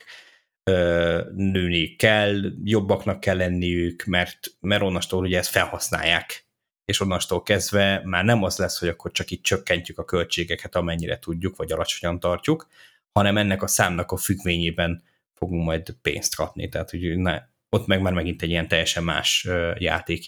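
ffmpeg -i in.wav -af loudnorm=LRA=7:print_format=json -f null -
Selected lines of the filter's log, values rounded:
"input_i" : "-23.1",
"input_tp" : "-2.1",
"input_lra" : "3.8",
"input_thresh" : "-33.4",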